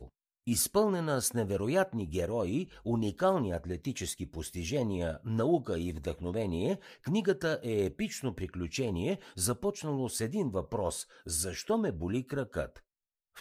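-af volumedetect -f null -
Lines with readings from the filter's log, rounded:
mean_volume: -32.8 dB
max_volume: -15.1 dB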